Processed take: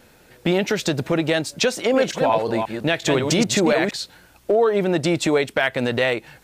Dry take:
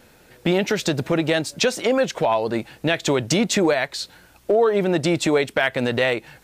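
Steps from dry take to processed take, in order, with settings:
0:01.76–0:03.96: delay that plays each chunk backwards 179 ms, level −5 dB

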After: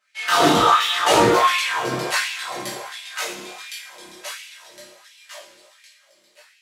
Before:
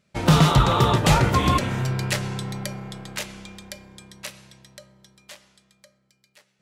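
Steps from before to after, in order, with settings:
multi-voice chorus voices 6, 0.37 Hz, delay 18 ms, depth 1.6 ms
coupled-rooms reverb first 0.51 s, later 4.3 s, from −18 dB, DRR −7 dB
auto-filter high-pass sine 1.4 Hz 270–2,600 Hz
level −1 dB

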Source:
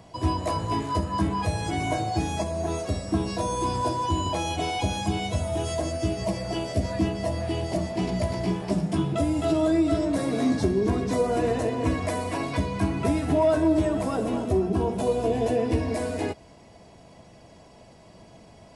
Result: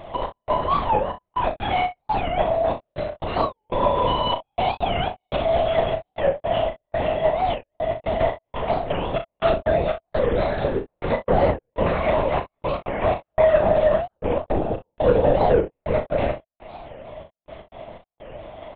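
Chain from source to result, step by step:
low shelf with overshoot 360 Hz −13.5 dB, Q 3
gate pattern "xx..xxxxx..x." 121 BPM −60 dB
in parallel at +1 dB: downward compressor, threshold −35 dBFS, peak gain reduction 21 dB
on the sum: soft clipping −12.5 dBFS, distortion −18 dB
linear-prediction vocoder at 8 kHz whisper
on a send: ambience of single reflections 37 ms −7.5 dB, 62 ms −14.5 dB
on the sum: wow of a warped record 45 rpm, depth 250 cents
level +3 dB

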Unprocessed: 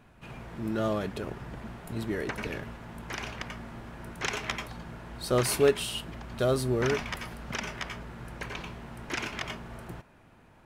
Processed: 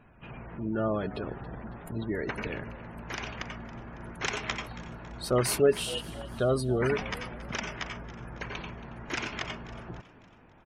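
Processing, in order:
gate on every frequency bin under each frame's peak −25 dB strong
echo with shifted repeats 276 ms, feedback 49%, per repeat +69 Hz, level −17.5 dB

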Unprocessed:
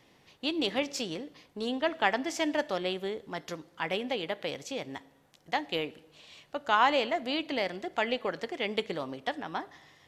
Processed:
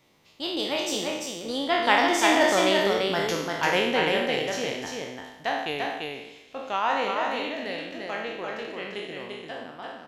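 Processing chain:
peak hold with a decay on every bin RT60 0.90 s
source passing by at 0:03.07, 28 m/s, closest 28 metres
high-shelf EQ 11,000 Hz +6.5 dB
single-tap delay 343 ms −3.5 dB
level +7 dB

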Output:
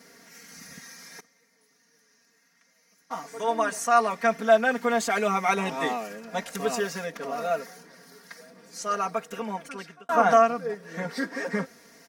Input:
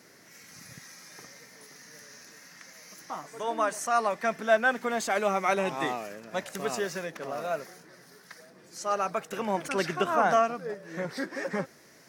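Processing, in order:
0:01.20–0:03.20: noise gate −40 dBFS, range −18 dB
comb filter 4.3 ms, depth 97%
0:08.88–0:10.09: fade out

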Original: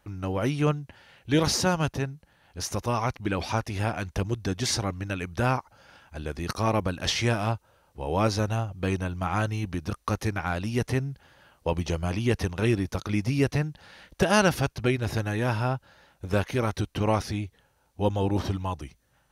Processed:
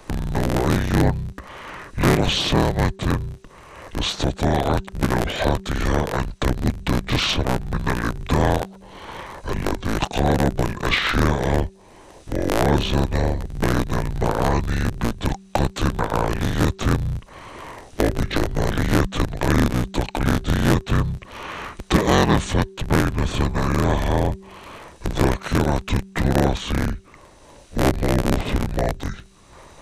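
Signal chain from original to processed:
sub-harmonics by changed cycles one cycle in 3, inverted
in parallel at +2 dB: downward compressor, threshold −37 dBFS, peak gain reduction 20 dB
on the sum: hum removal 297.4 Hz, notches 2
change of speed 0.648×
multiband upward and downward compressor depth 40%
level +4.5 dB

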